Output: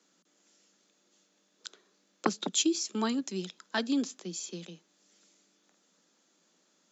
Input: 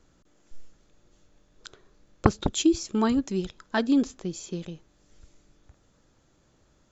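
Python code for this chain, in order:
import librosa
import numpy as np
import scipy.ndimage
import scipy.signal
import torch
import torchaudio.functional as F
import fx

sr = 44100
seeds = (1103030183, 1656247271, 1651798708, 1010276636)

y = scipy.signal.sosfilt(scipy.signal.butter(16, 170.0, 'highpass', fs=sr, output='sos'), x)
y = fx.peak_eq(y, sr, hz=5600.0, db=10.0, octaves=2.8)
y = y * librosa.db_to_amplitude(-7.5)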